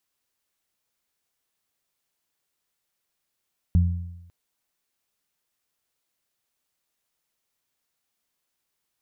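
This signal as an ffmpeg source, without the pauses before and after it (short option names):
-f lavfi -i "aevalsrc='0.211*pow(10,-3*t/0.94)*sin(2*PI*86.8*t)+0.0944*pow(10,-3*t/0.75)*sin(2*PI*173.6*t)':d=0.55:s=44100"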